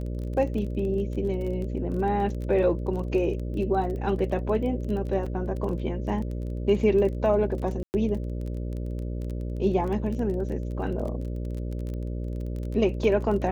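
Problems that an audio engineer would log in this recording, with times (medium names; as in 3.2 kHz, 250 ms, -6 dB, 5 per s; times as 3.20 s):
buzz 60 Hz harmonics 10 -31 dBFS
crackle 22 per s -33 dBFS
5.26 s: dropout 4.9 ms
7.83–7.94 s: dropout 109 ms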